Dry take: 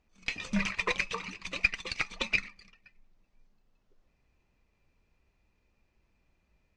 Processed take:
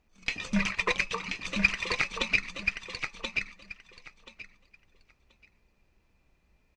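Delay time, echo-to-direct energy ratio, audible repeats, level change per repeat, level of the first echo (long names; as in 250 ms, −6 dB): 1,031 ms, −5.0 dB, 3, −15.0 dB, −5.0 dB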